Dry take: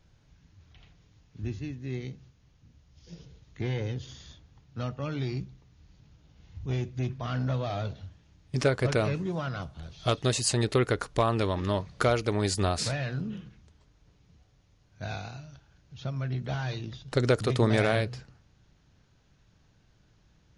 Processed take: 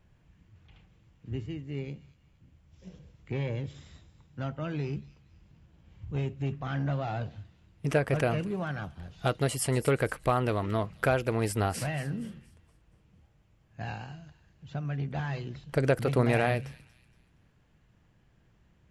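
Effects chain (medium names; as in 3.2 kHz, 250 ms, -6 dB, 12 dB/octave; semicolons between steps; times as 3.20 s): high-order bell 4.7 kHz -9.5 dB 1.2 oct; feedback echo behind a high-pass 256 ms, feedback 37%, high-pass 3.5 kHz, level -13 dB; speed mistake 44.1 kHz file played as 48 kHz; trim -1 dB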